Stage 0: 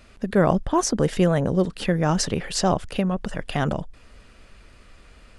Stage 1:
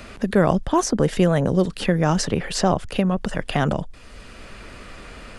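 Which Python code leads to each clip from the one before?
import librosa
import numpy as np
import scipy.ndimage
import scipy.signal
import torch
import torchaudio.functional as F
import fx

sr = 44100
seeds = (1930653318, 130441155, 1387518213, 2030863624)

y = fx.band_squash(x, sr, depth_pct=40)
y = F.gain(torch.from_numpy(y), 2.0).numpy()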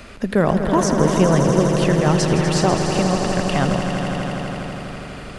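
y = fx.echo_swell(x, sr, ms=82, loudest=5, wet_db=-9.0)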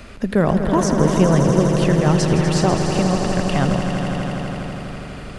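y = fx.low_shelf(x, sr, hz=240.0, db=4.5)
y = F.gain(torch.from_numpy(y), -1.5).numpy()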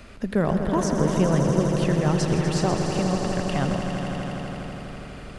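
y = x + 10.0 ** (-13.0 / 20.0) * np.pad(x, (int(124 * sr / 1000.0), 0))[:len(x)]
y = F.gain(torch.from_numpy(y), -6.0).numpy()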